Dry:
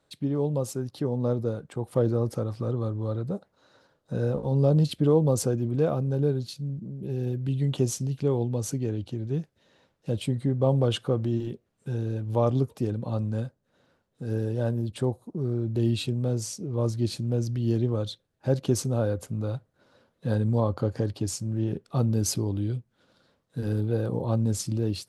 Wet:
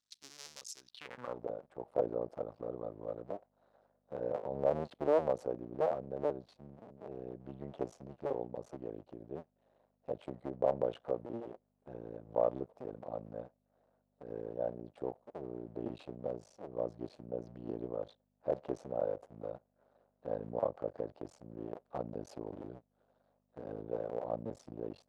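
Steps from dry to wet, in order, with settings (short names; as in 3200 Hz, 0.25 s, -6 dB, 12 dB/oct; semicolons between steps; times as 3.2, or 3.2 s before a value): cycle switcher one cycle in 2, muted; hum 50 Hz, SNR 27 dB; band-pass sweep 5600 Hz -> 640 Hz, 0.79–1.45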